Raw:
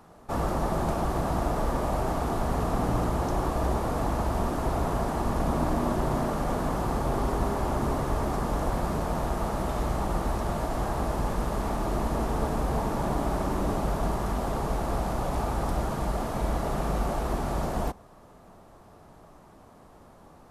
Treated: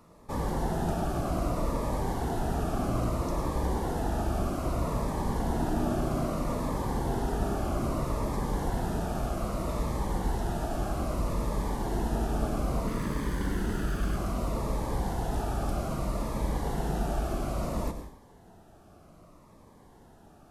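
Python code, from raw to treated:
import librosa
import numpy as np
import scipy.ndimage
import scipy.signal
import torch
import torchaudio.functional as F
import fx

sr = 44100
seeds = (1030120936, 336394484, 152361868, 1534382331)

y = fx.lower_of_two(x, sr, delay_ms=0.63, at=(12.87, 14.17))
y = fx.rev_plate(y, sr, seeds[0], rt60_s=0.6, hf_ratio=1.0, predelay_ms=90, drr_db=8.5)
y = fx.notch_cascade(y, sr, direction='falling', hz=0.62)
y = y * 10.0 ** (-2.0 / 20.0)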